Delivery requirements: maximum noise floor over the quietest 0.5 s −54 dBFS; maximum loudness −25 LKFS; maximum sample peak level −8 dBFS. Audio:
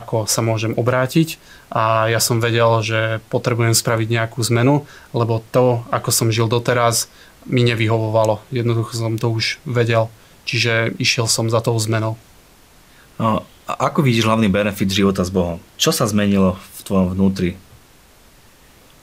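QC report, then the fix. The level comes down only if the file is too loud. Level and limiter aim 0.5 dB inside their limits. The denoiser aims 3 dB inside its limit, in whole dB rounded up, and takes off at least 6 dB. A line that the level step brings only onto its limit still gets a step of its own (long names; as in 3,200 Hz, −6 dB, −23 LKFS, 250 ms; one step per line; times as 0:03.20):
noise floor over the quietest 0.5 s −48 dBFS: out of spec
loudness −18.0 LKFS: out of spec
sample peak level −3.5 dBFS: out of spec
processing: level −7.5 dB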